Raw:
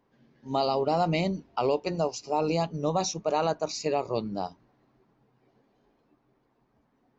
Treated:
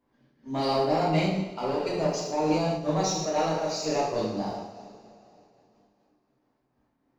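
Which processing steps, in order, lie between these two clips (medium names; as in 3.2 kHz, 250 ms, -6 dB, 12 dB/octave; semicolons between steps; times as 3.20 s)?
waveshaping leveller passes 1; reverberation, pre-delay 3 ms, DRR -6.5 dB; random flutter of the level, depth 60%; trim -6 dB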